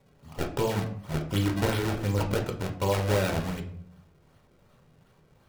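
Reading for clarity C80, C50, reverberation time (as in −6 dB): 13.5 dB, 10.0 dB, 0.65 s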